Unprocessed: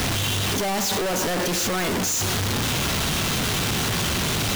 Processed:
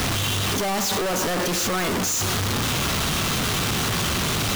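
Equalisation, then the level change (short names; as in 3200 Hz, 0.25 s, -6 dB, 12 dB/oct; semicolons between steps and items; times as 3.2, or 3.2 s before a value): bell 1200 Hz +4 dB 0.29 oct; 0.0 dB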